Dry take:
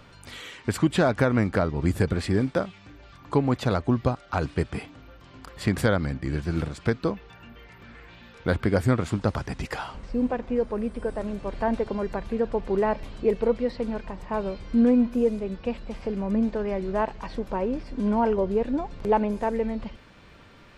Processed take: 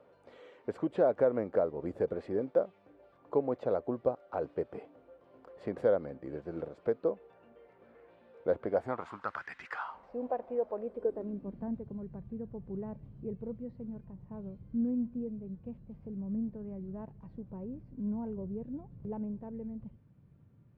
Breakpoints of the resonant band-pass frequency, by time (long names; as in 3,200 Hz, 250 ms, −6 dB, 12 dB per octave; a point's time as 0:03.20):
resonant band-pass, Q 2.9
0:08.60 520 Hz
0:09.54 1,900 Hz
0:10.17 650 Hz
0:10.77 650 Hz
0:11.82 130 Hz